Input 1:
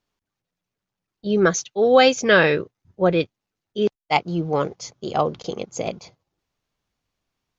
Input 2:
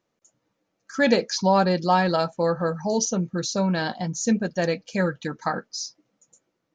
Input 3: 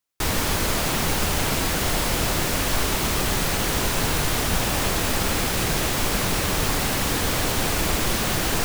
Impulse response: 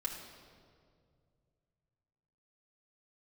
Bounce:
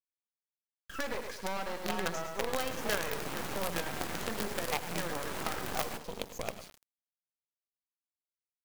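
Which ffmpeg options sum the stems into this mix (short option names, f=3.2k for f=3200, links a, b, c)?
-filter_complex "[0:a]equalizer=f=310:t=o:w=0.5:g=-8,bandreject=f=60:t=h:w=6,bandreject=f=120:t=h:w=6,bandreject=f=180:t=h:w=6,bandreject=f=240:t=h:w=6,bandreject=f=300:t=h:w=6,bandreject=f=360:t=h:w=6,bandreject=f=420:t=h:w=6,adelay=600,volume=-5.5dB,asplit=2[a][b];[b]volume=-11.5dB[c];[1:a]highpass=440,highshelf=f=3.1k:t=q:w=1.5:g=-9,asoftclip=type=hard:threshold=-21.5dB,volume=-2dB,asplit=3[d][e][f];[e]volume=-8.5dB[g];[2:a]alimiter=limit=-18dB:level=0:latency=1:release=62,adelay=2400,volume=-0.5dB[h];[f]apad=whole_len=487261[i];[h][i]sidechaingate=range=-33dB:threshold=-57dB:ratio=16:detection=peak[j];[c][g]amix=inputs=2:normalize=0,aecho=0:1:104|208|312|416:1|0.3|0.09|0.027[k];[a][d][j][k]amix=inputs=4:normalize=0,acrossover=split=120|2300[l][m][n];[l]acompressor=threshold=-50dB:ratio=4[o];[m]acompressor=threshold=-31dB:ratio=4[p];[n]acompressor=threshold=-44dB:ratio=4[q];[o][p][q]amix=inputs=3:normalize=0,acrusher=bits=5:dc=4:mix=0:aa=0.000001"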